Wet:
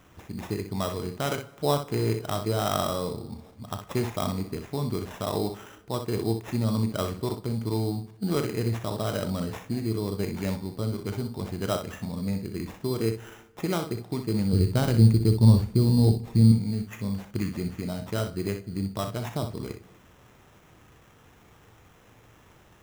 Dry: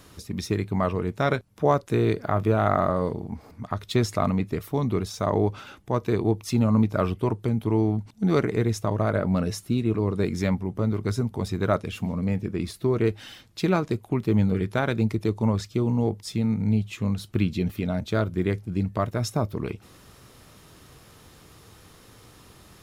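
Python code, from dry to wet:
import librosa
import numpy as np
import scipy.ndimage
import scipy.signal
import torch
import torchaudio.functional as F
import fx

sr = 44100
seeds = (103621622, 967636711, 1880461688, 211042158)

p1 = fx.riaa(x, sr, side='playback', at=(14.53, 16.52))
p2 = fx.sample_hold(p1, sr, seeds[0], rate_hz=4500.0, jitter_pct=0)
p3 = p2 + fx.room_early_taps(p2, sr, ms=(35, 62), db=(-12.5, -8.5), dry=0)
p4 = fx.rev_plate(p3, sr, seeds[1], rt60_s=1.2, hf_ratio=0.75, predelay_ms=0, drr_db=16.0)
y = p4 * librosa.db_to_amplitude(-5.5)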